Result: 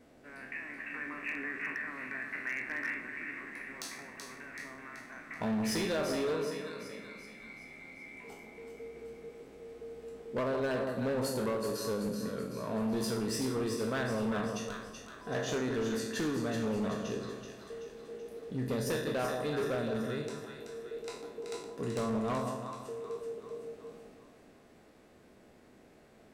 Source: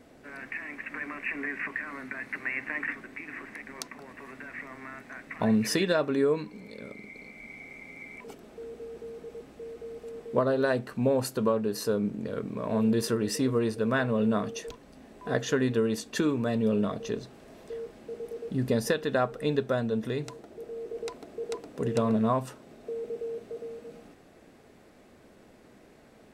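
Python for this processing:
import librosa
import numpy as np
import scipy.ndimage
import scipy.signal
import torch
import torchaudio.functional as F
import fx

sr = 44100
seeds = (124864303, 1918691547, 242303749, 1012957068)

y = fx.spec_trails(x, sr, decay_s=0.58)
y = fx.echo_split(y, sr, split_hz=1100.0, low_ms=165, high_ms=380, feedback_pct=52, wet_db=-6.5)
y = np.clip(10.0 ** (21.5 / 20.0) * y, -1.0, 1.0) / 10.0 ** (21.5 / 20.0)
y = y * 10.0 ** (-7.0 / 20.0)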